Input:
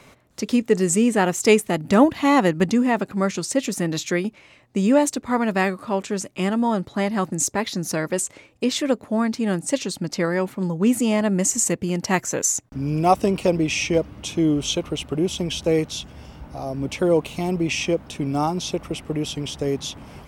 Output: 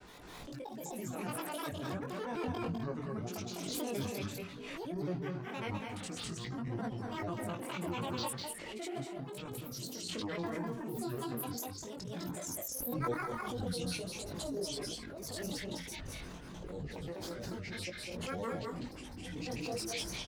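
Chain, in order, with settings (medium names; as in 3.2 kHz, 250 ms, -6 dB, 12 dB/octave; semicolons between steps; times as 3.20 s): hum notches 60/120/180/240/300/360/420 Hz; reverse; compression 10:1, threshold -32 dBFS, peak gain reduction 22 dB; reverse; FDN reverb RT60 0.41 s, low-frequency decay 1.05×, high-frequency decay 0.45×, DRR 12 dB; square tremolo 2.4 Hz, depth 65%, duty 85%; slow attack 224 ms; granulator, pitch spread up and down by 12 st; on a send: multi-tap echo 203/254 ms -3/-11.5 dB; on the sum: chorus voices 6, 0.58 Hz, delay 20 ms, depth 3.5 ms; swell ahead of each attack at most 24 dB/s; trim -1 dB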